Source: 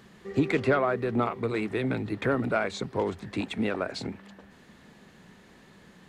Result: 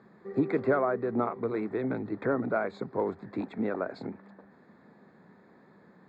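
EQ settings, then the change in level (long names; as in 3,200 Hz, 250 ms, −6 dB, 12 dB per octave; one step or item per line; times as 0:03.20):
moving average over 15 samples
Bessel high-pass filter 200 Hz, order 2
high-frequency loss of the air 54 metres
0.0 dB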